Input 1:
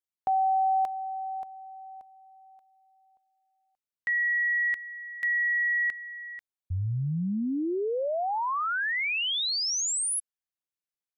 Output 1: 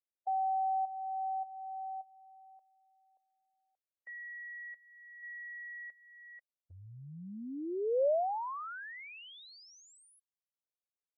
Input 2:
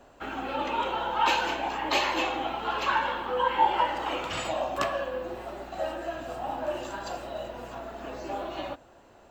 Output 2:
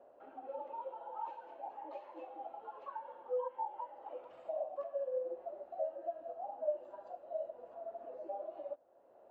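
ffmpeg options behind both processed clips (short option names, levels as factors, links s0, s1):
-af "acompressor=threshold=0.00708:ratio=3:attack=0.11:release=813:knee=6:detection=peak,afftdn=nr=14:nf=-32,bandpass=f=570:t=q:w=2.9:csg=0,volume=4.73"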